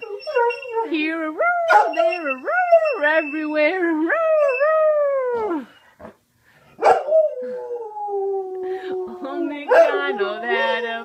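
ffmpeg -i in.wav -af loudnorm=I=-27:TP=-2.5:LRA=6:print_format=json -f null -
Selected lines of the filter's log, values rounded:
"input_i" : "-20.0",
"input_tp" : "-3.4",
"input_lra" : "4.1",
"input_thresh" : "-30.3",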